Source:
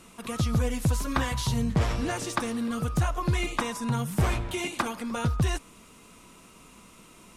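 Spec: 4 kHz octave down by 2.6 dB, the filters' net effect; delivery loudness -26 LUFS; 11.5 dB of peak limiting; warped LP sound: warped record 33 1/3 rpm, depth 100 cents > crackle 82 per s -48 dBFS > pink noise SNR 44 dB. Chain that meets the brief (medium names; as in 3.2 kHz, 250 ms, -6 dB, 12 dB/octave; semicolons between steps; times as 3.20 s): peaking EQ 4 kHz -3.5 dB; peak limiter -24.5 dBFS; warped record 33 1/3 rpm, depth 100 cents; crackle 82 per s -48 dBFS; pink noise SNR 44 dB; trim +7.5 dB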